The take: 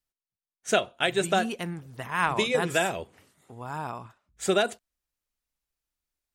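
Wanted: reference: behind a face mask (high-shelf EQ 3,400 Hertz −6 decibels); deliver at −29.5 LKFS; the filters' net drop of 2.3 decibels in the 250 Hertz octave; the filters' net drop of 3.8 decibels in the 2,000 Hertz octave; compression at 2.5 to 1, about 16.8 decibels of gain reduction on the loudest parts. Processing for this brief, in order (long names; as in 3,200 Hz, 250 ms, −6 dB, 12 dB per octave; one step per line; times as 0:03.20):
parametric band 250 Hz −3.5 dB
parametric band 2,000 Hz −3.5 dB
downward compressor 2.5 to 1, threshold −47 dBFS
high-shelf EQ 3,400 Hz −6 dB
level +15.5 dB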